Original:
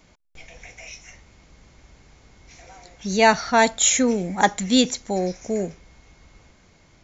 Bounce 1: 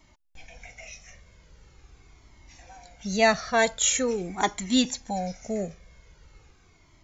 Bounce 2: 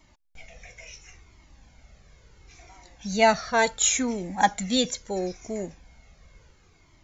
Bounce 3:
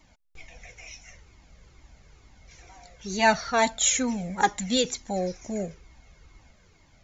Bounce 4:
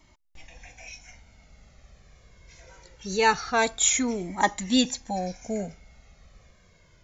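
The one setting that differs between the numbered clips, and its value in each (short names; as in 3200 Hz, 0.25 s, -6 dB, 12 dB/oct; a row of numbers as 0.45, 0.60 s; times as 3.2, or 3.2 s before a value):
cascading flanger, rate: 0.43, 0.72, 2.2, 0.23 Hz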